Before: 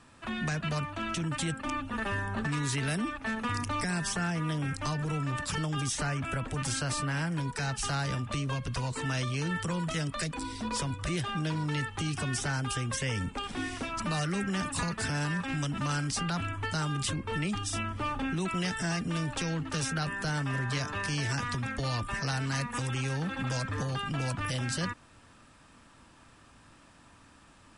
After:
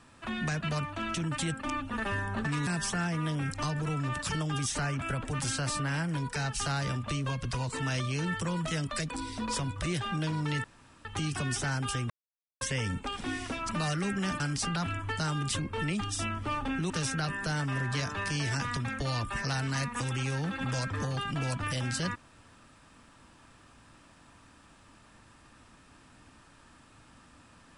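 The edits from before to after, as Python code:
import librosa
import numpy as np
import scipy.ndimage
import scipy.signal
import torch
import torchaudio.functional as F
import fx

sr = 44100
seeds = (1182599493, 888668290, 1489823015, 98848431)

y = fx.edit(x, sr, fx.cut(start_s=2.67, length_s=1.23),
    fx.insert_room_tone(at_s=11.87, length_s=0.41),
    fx.insert_silence(at_s=12.92, length_s=0.51),
    fx.cut(start_s=14.71, length_s=1.23),
    fx.cut(start_s=18.44, length_s=1.24), tone=tone)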